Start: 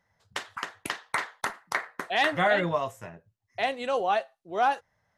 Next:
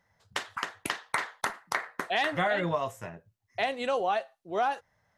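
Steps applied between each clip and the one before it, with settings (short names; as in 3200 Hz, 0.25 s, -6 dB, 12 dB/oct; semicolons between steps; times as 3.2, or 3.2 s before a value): compressor 4:1, threshold -26 dBFS, peak gain reduction 7 dB; gain +1.5 dB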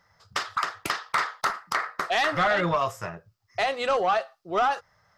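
thirty-one-band EQ 250 Hz -9 dB, 1250 Hz +11 dB, 5000 Hz +10 dB, 10000 Hz -6 dB; in parallel at -1 dB: limiter -16.5 dBFS, peak gain reduction 9 dB; on the sum: soft clip -16 dBFS, distortion -14 dB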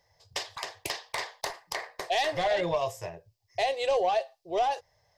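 fixed phaser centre 550 Hz, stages 4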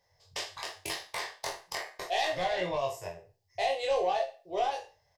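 spectral trails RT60 0.35 s; doubler 22 ms -2 dB; gain -6 dB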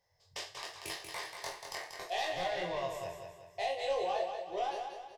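feedback echo 0.187 s, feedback 44%, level -6.5 dB; gain -5.5 dB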